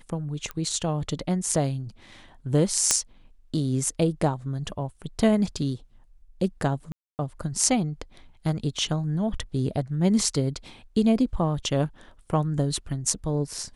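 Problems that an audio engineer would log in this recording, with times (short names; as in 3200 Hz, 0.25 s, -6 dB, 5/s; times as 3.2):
0.51 pop -19 dBFS
2.91 pop -4 dBFS
6.92–7.19 gap 0.269 s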